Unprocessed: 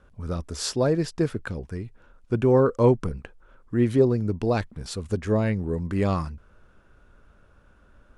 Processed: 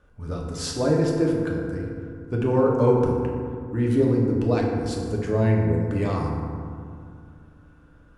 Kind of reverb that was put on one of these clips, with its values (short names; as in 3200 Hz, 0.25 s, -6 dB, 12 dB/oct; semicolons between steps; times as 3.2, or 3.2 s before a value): FDN reverb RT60 2.3 s, low-frequency decay 1.35×, high-frequency decay 0.4×, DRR -2 dB; gain -3.5 dB